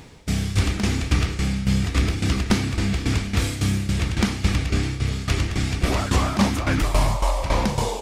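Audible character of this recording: a quantiser's noise floor 12-bit, dither none; tremolo saw down 3.6 Hz, depth 75%

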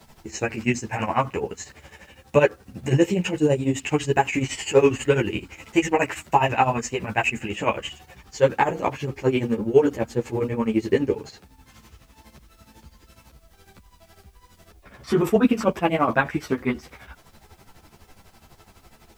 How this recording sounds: tremolo triangle 12 Hz, depth 90%; a quantiser's noise floor 12-bit, dither triangular; a shimmering, thickened sound

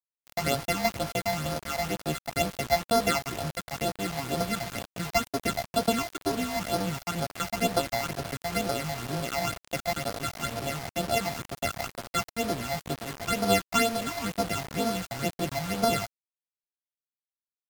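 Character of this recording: a buzz of ramps at a fixed pitch in blocks of 64 samples; phasing stages 8, 2.1 Hz, lowest notch 380–2700 Hz; a quantiser's noise floor 6-bit, dither none; MP3

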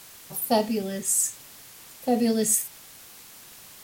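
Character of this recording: phasing stages 2, 0.64 Hz, lowest notch 800–1800 Hz; a quantiser's noise floor 8-bit, dither triangular; Vorbis

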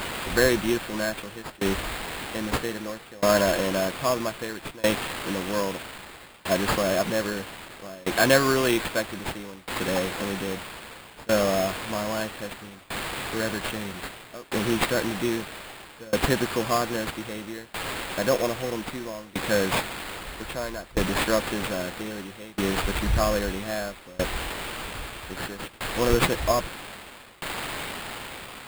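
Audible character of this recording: a quantiser's noise floor 6-bit, dither triangular; tremolo saw down 0.62 Hz, depth 95%; aliases and images of a low sample rate 5900 Hz, jitter 0%

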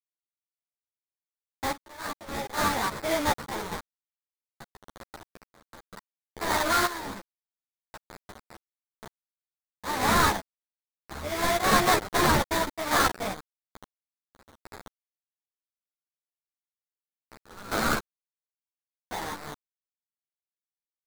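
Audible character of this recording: a quantiser's noise floor 6-bit, dither none; random-step tremolo 3.5 Hz, depth 85%; aliases and images of a low sample rate 2800 Hz, jitter 20%; a shimmering, thickened sound

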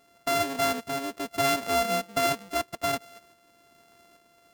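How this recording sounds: a buzz of ramps at a fixed pitch in blocks of 64 samples; tremolo saw up 1.2 Hz, depth 45%

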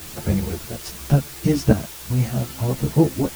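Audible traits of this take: random-step tremolo, depth 75%; a quantiser's noise floor 8-bit, dither triangular; a shimmering, thickened sound

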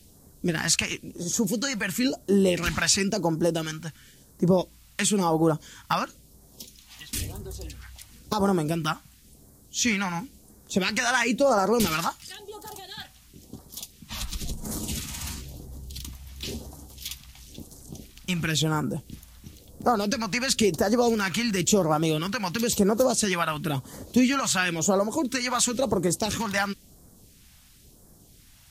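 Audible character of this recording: a quantiser's noise floor 10-bit, dither triangular; phasing stages 2, 0.97 Hz, lowest notch 390–2600 Hz; Vorbis

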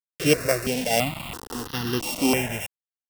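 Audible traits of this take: a buzz of ramps at a fixed pitch in blocks of 16 samples; tremolo triangle 1 Hz, depth 55%; a quantiser's noise floor 6-bit, dither none; notches that jump at a steady rate 3 Hz 230–2300 Hz

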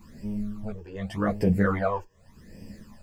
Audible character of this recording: a quantiser's noise floor 12-bit, dither none; phasing stages 12, 0.86 Hz, lowest notch 210–1300 Hz; tremolo triangle 0.84 Hz, depth 90%; a shimmering, thickened sound

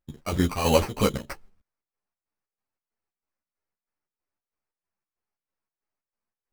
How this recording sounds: chopped level 3.1 Hz, depth 60%, duty 60%; aliases and images of a low sample rate 3500 Hz, jitter 0%; a shimmering, thickened sound

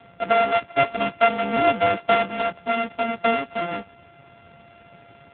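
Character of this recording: a buzz of ramps at a fixed pitch in blocks of 64 samples; AMR-NB

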